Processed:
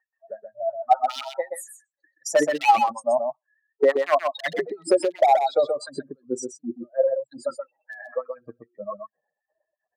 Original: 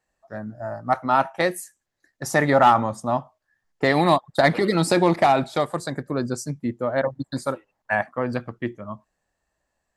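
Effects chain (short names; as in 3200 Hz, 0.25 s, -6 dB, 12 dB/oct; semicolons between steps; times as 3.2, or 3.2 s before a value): spectral contrast raised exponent 2.9; in parallel at -1.5 dB: compressor 4:1, threshold -30 dBFS, peak gain reduction 15 dB; on the sum: wavefolder -11 dBFS; LFO high-pass sine 2.8 Hz 350–4200 Hz; echo 0.127 s -6 dB; mismatched tape noise reduction decoder only; gain -3.5 dB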